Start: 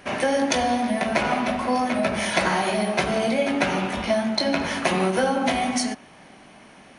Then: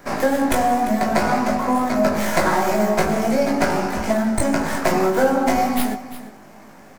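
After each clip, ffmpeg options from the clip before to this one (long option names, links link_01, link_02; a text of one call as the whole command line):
ffmpeg -i in.wav -filter_complex "[0:a]acrossover=split=350|940|2100[link_01][link_02][link_03][link_04];[link_04]aeval=exprs='abs(val(0))':channel_layout=same[link_05];[link_01][link_02][link_03][link_05]amix=inputs=4:normalize=0,asplit=2[link_06][link_07];[link_07]adelay=19,volume=-4.5dB[link_08];[link_06][link_08]amix=inputs=2:normalize=0,aecho=1:1:347:0.188,volume=3dB" out.wav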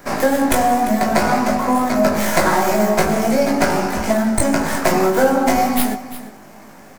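ffmpeg -i in.wav -af "highshelf=frequency=6600:gain=5,volume=2.5dB" out.wav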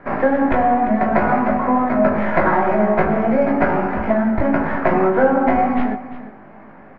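ffmpeg -i in.wav -af "lowpass=frequency=2100:width=0.5412,lowpass=frequency=2100:width=1.3066" out.wav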